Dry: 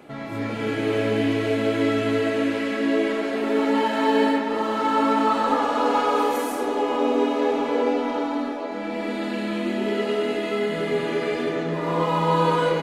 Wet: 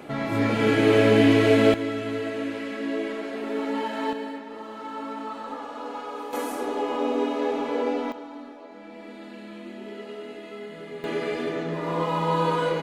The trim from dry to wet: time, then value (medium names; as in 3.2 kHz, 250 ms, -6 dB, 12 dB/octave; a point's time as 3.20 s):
+5 dB
from 1.74 s -7 dB
from 4.13 s -14 dB
from 6.33 s -4 dB
from 8.12 s -14 dB
from 11.04 s -3.5 dB